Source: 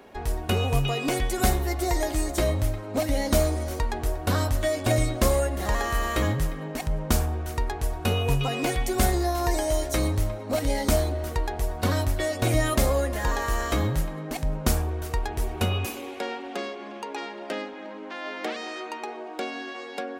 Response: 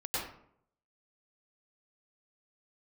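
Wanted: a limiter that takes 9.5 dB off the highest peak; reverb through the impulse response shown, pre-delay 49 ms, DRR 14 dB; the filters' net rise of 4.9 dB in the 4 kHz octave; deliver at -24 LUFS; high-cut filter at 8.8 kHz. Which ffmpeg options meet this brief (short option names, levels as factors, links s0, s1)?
-filter_complex "[0:a]lowpass=8800,equalizer=f=4000:t=o:g=6.5,alimiter=limit=0.126:level=0:latency=1,asplit=2[s0][s1];[1:a]atrim=start_sample=2205,adelay=49[s2];[s1][s2]afir=irnorm=-1:irlink=0,volume=0.106[s3];[s0][s3]amix=inputs=2:normalize=0,volume=1.78"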